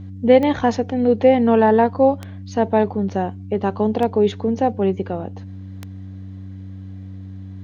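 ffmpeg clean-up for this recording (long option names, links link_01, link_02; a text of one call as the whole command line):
ffmpeg -i in.wav -af "adeclick=threshold=4,bandreject=frequency=95.6:width_type=h:width=4,bandreject=frequency=191.2:width_type=h:width=4,bandreject=frequency=286.8:width_type=h:width=4" out.wav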